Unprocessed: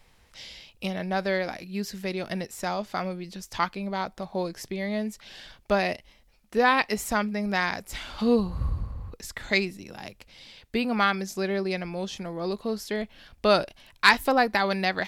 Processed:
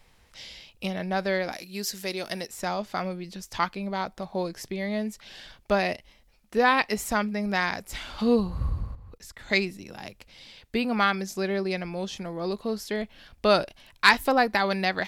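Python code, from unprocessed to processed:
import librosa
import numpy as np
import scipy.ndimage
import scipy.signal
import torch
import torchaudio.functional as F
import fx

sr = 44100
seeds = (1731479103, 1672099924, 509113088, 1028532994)

y = fx.bass_treble(x, sr, bass_db=-8, treble_db=10, at=(1.52, 2.48))
y = fx.level_steps(y, sr, step_db=15, at=(8.95, 9.5))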